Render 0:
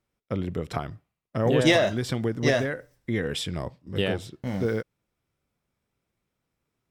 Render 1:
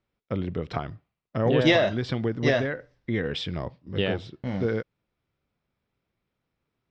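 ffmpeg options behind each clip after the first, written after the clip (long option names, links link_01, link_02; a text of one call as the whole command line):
ffmpeg -i in.wav -af "lowpass=frequency=4800:width=0.5412,lowpass=frequency=4800:width=1.3066" out.wav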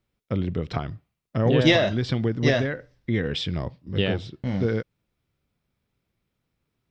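ffmpeg -i in.wav -af "equalizer=frequency=890:width=0.33:gain=-6,volume=5.5dB" out.wav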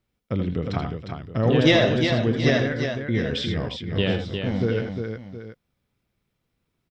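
ffmpeg -i in.wav -af "aecho=1:1:79|83|355|719:0.335|0.299|0.501|0.2" out.wav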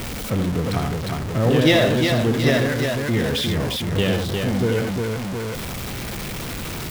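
ffmpeg -i in.wav -af "aeval=exprs='val(0)+0.5*0.0708*sgn(val(0))':channel_layout=same" out.wav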